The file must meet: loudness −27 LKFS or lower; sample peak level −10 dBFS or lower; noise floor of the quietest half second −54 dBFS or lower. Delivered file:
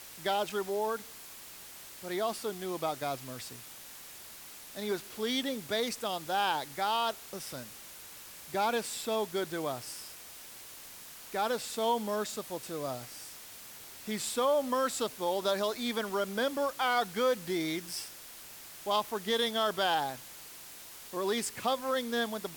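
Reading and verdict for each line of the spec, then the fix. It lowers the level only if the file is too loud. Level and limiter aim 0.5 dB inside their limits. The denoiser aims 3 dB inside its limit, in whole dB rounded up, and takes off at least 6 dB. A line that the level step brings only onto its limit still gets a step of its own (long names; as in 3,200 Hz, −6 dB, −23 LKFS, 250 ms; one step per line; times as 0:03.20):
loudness −33.0 LKFS: in spec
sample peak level −16.0 dBFS: in spec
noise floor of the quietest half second −49 dBFS: out of spec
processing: broadband denoise 8 dB, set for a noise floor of −49 dBFS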